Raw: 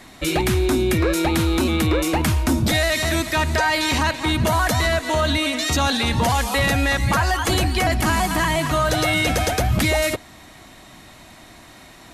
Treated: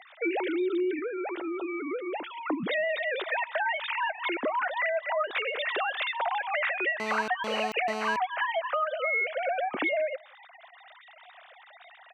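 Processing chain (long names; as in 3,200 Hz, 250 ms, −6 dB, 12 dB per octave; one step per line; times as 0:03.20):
three sine waves on the formant tracks
high-pass filter 290 Hz 12 dB per octave
notch filter 880 Hz, Q 18
downward compressor, threshold −25 dBFS, peak gain reduction 14.5 dB
0:00.99–0:02.37: tuned comb filter 900 Hz, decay 0.31 s, mix 40%
slap from a distant wall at 30 metres, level −29 dB
0:07.00–0:08.16: phone interference −32 dBFS
level −1.5 dB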